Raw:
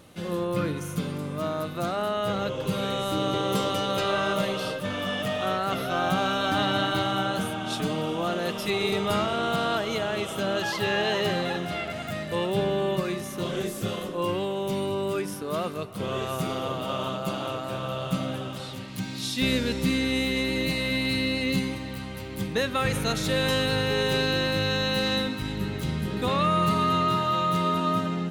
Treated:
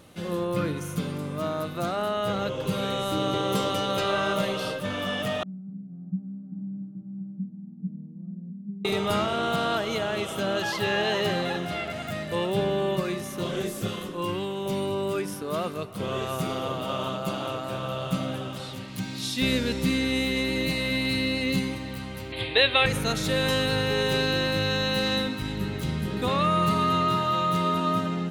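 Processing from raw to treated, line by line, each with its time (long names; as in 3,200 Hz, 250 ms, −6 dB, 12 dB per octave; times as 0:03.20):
0:05.43–0:08.85: flat-topped band-pass 190 Hz, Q 4
0:13.87–0:14.66: parametric band 610 Hz −8 dB 0.67 octaves
0:22.32–0:22.86: drawn EQ curve 120 Hz 0 dB, 190 Hz −20 dB, 300 Hz 0 dB, 720 Hz +6 dB, 1,300 Hz 0 dB, 2,400 Hz +12 dB, 4,000 Hz +12 dB, 5,900 Hz −21 dB, 9,600 Hz −3 dB, 15,000 Hz −26 dB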